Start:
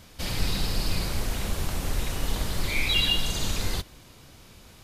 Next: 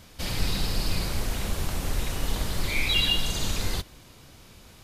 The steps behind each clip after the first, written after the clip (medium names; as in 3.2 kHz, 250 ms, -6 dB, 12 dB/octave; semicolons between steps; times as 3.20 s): no audible change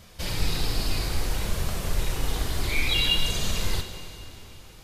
flange 0.58 Hz, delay 1.6 ms, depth 1.3 ms, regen -60%; plate-style reverb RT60 3.2 s, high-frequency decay 0.9×, DRR 7 dB; trim +4 dB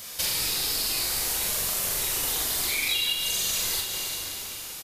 RIAA curve recording; compression 6:1, threshold -31 dBFS, peak gain reduction 15.5 dB; doubling 42 ms -4 dB; trim +5 dB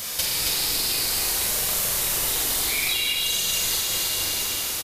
compression, threshold -31 dBFS, peak gain reduction 8.5 dB; on a send: delay 272 ms -4 dB; on the sum: trim +8.5 dB